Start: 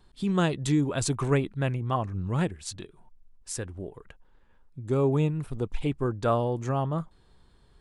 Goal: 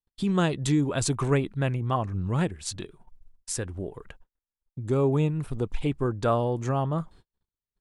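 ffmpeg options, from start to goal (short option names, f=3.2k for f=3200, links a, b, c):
-filter_complex "[0:a]agate=range=-44dB:threshold=-51dB:ratio=16:detection=peak,asplit=2[a][b];[b]acompressor=threshold=-34dB:ratio=6,volume=-1dB[c];[a][c]amix=inputs=2:normalize=0,volume=-1dB"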